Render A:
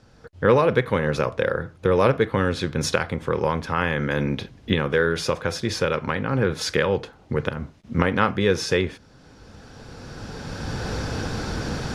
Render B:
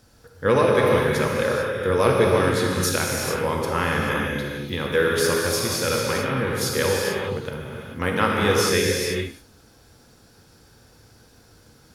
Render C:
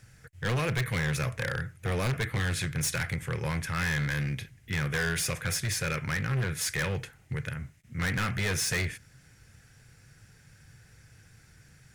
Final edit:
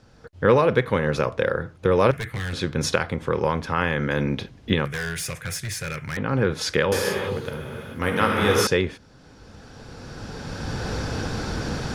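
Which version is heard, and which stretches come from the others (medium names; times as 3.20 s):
A
2.11–2.53 s: from C
4.85–6.17 s: from C
6.92–8.67 s: from B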